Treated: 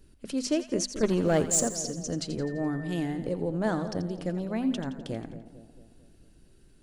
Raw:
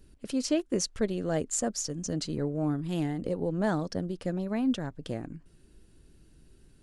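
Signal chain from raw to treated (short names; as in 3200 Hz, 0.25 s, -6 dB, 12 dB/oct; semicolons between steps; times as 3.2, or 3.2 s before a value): notches 50/100/150/200/250 Hz; 1.03–1.63 sample leveller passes 2; 2.42–3.03 whine 1800 Hz -46 dBFS; split-band echo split 790 Hz, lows 0.224 s, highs 85 ms, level -11.5 dB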